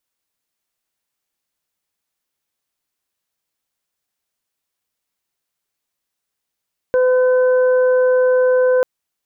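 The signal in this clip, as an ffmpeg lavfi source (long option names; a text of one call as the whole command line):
ffmpeg -f lavfi -i "aevalsrc='0.282*sin(2*PI*507*t)+0.0355*sin(2*PI*1014*t)+0.0501*sin(2*PI*1521*t)':duration=1.89:sample_rate=44100" out.wav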